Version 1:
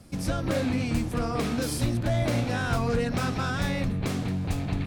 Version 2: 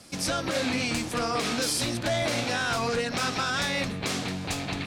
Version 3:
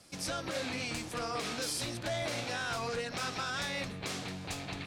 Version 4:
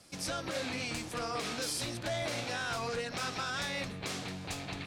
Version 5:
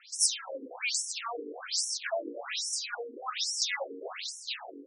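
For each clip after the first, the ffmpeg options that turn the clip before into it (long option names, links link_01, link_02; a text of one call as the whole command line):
ffmpeg -i in.wav -af "lowpass=5500,aemphasis=mode=production:type=riaa,alimiter=limit=-21.5dB:level=0:latency=1:release=97,volume=4.5dB" out.wav
ffmpeg -i in.wav -af "equalizer=frequency=240:width_type=o:width=0.4:gain=-5,volume=-8dB" out.wav
ffmpeg -i in.wav -af anull out.wav
ffmpeg -i in.wav -af "aemphasis=mode=production:type=bsi,aphaser=in_gain=1:out_gain=1:delay=1.3:decay=0.37:speed=0.52:type=sinusoidal,afftfilt=real='re*between(b*sr/1024,340*pow(7700/340,0.5+0.5*sin(2*PI*1.2*pts/sr))/1.41,340*pow(7700/340,0.5+0.5*sin(2*PI*1.2*pts/sr))*1.41)':imag='im*between(b*sr/1024,340*pow(7700/340,0.5+0.5*sin(2*PI*1.2*pts/sr))/1.41,340*pow(7700/340,0.5+0.5*sin(2*PI*1.2*pts/sr))*1.41)':win_size=1024:overlap=0.75,volume=6.5dB" out.wav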